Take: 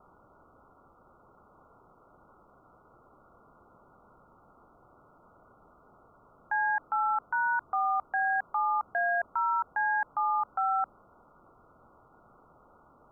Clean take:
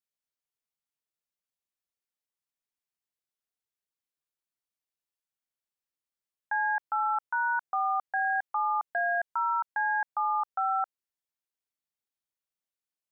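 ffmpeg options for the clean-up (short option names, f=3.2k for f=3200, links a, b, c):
-af "afwtdn=0.004"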